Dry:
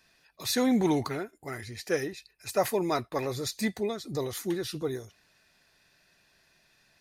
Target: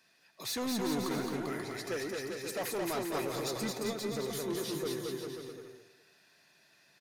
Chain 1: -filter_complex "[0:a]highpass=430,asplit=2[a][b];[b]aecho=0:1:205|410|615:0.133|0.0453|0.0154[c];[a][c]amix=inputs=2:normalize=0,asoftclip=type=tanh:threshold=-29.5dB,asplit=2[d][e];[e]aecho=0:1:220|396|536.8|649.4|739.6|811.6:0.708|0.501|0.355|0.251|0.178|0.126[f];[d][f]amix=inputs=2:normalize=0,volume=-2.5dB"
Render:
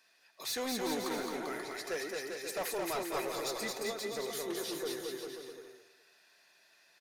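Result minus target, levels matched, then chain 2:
125 Hz band -10.0 dB
-filter_complex "[0:a]highpass=160,asplit=2[a][b];[b]aecho=0:1:205|410|615:0.133|0.0453|0.0154[c];[a][c]amix=inputs=2:normalize=0,asoftclip=type=tanh:threshold=-29.5dB,asplit=2[d][e];[e]aecho=0:1:220|396|536.8|649.4|739.6|811.6:0.708|0.501|0.355|0.251|0.178|0.126[f];[d][f]amix=inputs=2:normalize=0,volume=-2.5dB"

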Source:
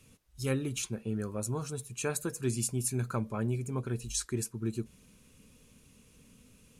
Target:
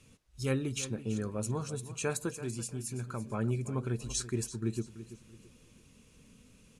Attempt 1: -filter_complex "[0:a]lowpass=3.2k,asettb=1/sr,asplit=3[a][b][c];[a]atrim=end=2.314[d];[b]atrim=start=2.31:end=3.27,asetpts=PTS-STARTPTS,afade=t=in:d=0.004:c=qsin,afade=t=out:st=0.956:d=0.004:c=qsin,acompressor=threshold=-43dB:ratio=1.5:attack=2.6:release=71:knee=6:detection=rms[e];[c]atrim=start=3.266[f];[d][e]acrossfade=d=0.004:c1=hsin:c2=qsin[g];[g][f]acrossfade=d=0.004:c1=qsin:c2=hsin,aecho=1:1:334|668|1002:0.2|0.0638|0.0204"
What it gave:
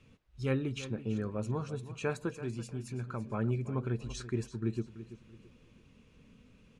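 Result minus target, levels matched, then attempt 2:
8000 Hz band -12.5 dB
-filter_complex "[0:a]lowpass=9.2k,asettb=1/sr,asplit=3[a][b][c];[a]atrim=end=2.314[d];[b]atrim=start=2.31:end=3.27,asetpts=PTS-STARTPTS,afade=t=in:d=0.004:c=qsin,afade=t=out:st=0.956:d=0.004:c=qsin,acompressor=threshold=-43dB:ratio=1.5:attack=2.6:release=71:knee=6:detection=rms[e];[c]atrim=start=3.266[f];[d][e]acrossfade=d=0.004:c1=hsin:c2=qsin[g];[g][f]acrossfade=d=0.004:c1=qsin:c2=hsin,aecho=1:1:334|668|1002:0.2|0.0638|0.0204"

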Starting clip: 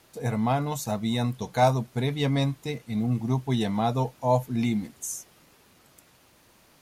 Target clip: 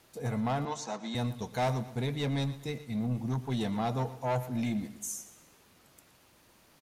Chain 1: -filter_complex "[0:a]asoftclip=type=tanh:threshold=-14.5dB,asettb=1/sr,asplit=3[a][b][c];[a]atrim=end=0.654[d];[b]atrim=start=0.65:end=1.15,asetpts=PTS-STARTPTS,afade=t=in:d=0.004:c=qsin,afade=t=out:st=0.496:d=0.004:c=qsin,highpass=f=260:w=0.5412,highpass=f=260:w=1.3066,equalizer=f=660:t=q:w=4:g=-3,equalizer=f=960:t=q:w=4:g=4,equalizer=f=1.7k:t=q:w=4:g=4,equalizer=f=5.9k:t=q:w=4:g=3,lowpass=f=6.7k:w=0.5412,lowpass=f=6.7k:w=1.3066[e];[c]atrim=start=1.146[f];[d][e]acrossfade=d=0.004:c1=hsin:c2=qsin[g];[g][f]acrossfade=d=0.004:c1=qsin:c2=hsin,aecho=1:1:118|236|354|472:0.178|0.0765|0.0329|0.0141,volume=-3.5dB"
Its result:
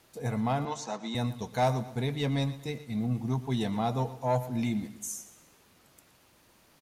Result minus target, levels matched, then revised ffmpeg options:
soft clip: distortion -8 dB
-filter_complex "[0:a]asoftclip=type=tanh:threshold=-21.5dB,asettb=1/sr,asplit=3[a][b][c];[a]atrim=end=0.654[d];[b]atrim=start=0.65:end=1.15,asetpts=PTS-STARTPTS,afade=t=in:d=0.004:c=qsin,afade=t=out:st=0.496:d=0.004:c=qsin,highpass=f=260:w=0.5412,highpass=f=260:w=1.3066,equalizer=f=660:t=q:w=4:g=-3,equalizer=f=960:t=q:w=4:g=4,equalizer=f=1.7k:t=q:w=4:g=4,equalizer=f=5.9k:t=q:w=4:g=3,lowpass=f=6.7k:w=0.5412,lowpass=f=6.7k:w=1.3066[e];[c]atrim=start=1.146[f];[d][e]acrossfade=d=0.004:c1=hsin:c2=qsin[g];[g][f]acrossfade=d=0.004:c1=qsin:c2=hsin,aecho=1:1:118|236|354|472:0.178|0.0765|0.0329|0.0141,volume=-3.5dB"

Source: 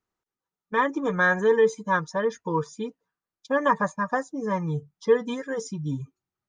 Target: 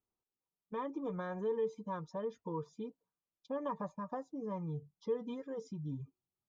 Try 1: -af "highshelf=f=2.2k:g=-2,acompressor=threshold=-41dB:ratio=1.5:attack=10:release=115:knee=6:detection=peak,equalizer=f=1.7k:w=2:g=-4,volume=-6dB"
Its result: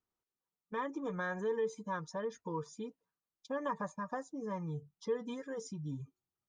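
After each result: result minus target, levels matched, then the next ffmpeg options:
2000 Hz band +9.5 dB; 4000 Hz band +5.5 dB
-af "highshelf=f=2.2k:g=-2,acompressor=threshold=-41dB:ratio=1.5:attack=10:release=115:knee=6:detection=peak,equalizer=f=1.7k:w=2:g=-15,volume=-6dB"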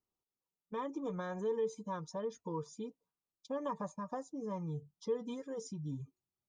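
4000 Hz band +5.0 dB
-af "lowpass=3.2k,highshelf=f=2.2k:g=-2,acompressor=threshold=-41dB:ratio=1.5:attack=10:release=115:knee=6:detection=peak,equalizer=f=1.7k:w=2:g=-15,volume=-6dB"

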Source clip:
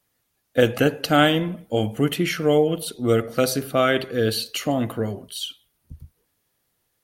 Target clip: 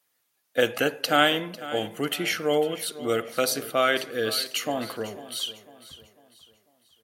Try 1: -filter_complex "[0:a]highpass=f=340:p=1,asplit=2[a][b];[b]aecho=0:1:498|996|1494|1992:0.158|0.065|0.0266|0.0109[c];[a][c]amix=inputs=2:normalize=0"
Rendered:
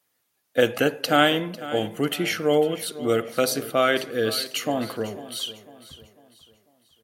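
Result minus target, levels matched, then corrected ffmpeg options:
250 Hz band +2.5 dB
-filter_complex "[0:a]highpass=f=710:p=1,asplit=2[a][b];[b]aecho=0:1:498|996|1494|1992:0.158|0.065|0.0266|0.0109[c];[a][c]amix=inputs=2:normalize=0"

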